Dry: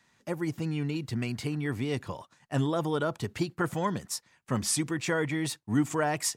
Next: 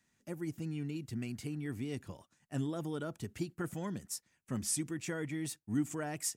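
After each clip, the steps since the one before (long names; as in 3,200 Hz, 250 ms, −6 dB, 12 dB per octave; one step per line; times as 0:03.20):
octave-band graphic EQ 125/500/1,000/2,000/4,000 Hz −5/−6/−11/−4/−8 dB
level −3.5 dB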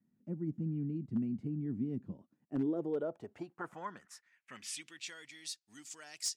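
band-pass filter sweep 210 Hz → 4,600 Hz, 0:02.11–0:05.24
wave folding −34 dBFS
level +8 dB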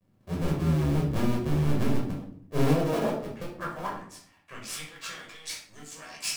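sub-harmonics by changed cycles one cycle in 2, muted
convolution reverb RT60 0.55 s, pre-delay 10 ms, DRR −4 dB
level +3 dB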